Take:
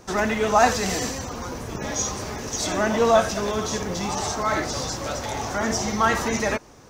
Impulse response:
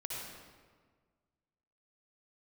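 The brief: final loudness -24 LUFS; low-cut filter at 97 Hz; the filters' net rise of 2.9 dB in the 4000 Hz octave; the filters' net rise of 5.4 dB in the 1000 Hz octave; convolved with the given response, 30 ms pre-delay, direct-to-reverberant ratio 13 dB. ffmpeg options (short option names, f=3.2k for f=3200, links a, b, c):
-filter_complex "[0:a]highpass=97,equalizer=f=1k:t=o:g=7,equalizer=f=4k:t=o:g=3.5,asplit=2[a][b];[1:a]atrim=start_sample=2205,adelay=30[c];[b][c]afir=irnorm=-1:irlink=0,volume=-14dB[d];[a][d]amix=inputs=2:normalize=0,volume=-3.5dB"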